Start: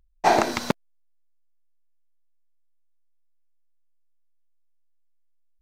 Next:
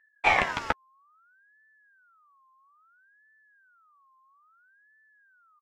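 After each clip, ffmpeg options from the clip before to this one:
-filter_complex "[0:a]aemphasis=mode=reproduction:type=75kf,asplit=2[a][b];[b]adelay=12,volume=-7.5dB[c];[a][c]amix=inputs=2:normalize=0,aeval=exprs='val(0)*sin(2*PI*1400*n/s+1400*0.25/0.6*sin(2*PI*0.6*n/s))':c=same,volume=-1dB"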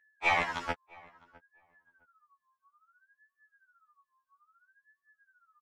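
-filter_complex "[0:a]asplit=2[a][b];[b]adelay=657,lowpass=f=1.5k:p=1,volume=-23dB,asplit=2[c][d];[d]adelay=657,lowpass=f=1.5k:p=1,volume=0.17[e];[a][c][e]amix=inputs=3:normalize=0,afftfilt=real='re*2*eq(mod(b,4),0)':imag='im*2*eq(mod(b,4),0)':win_size=2048:overlap=0.75,volume=-2.5dB"

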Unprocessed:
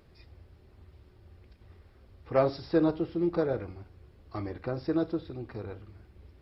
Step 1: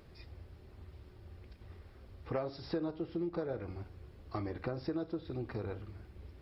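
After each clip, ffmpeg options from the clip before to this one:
-af "acompressor=threshold=-36dB:ratio=6,volume=2dB"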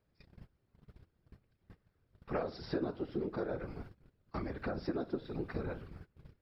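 -af "afftfilt=real='hypot(re,im)*cos(2*PI*random(0))':imag='hypot(re,im)*sin(2*PI*random(1))':win_size=512:overlap=0.75,agate=range=-21dB:threshold=-54dB:ratio=16:detection=peak,equalizer=f=1.5k:t=o:w=0.49:g=4.5,volume=6dB"

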